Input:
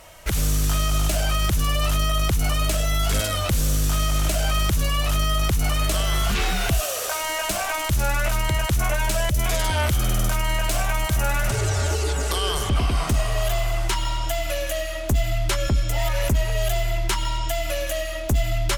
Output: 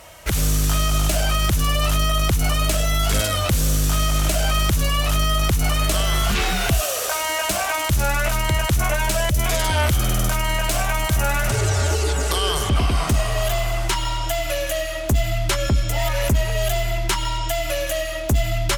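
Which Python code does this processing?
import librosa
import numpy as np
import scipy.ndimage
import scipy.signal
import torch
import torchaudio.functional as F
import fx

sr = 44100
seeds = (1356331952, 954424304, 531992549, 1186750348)

y = scipy.signal.sosfilt(scipy.signal.butter(2, 41.0, 'highpass', fs=sr, output='sos'), x)
y = F.gain(torch.from_numpy(y), 3.0).numpy()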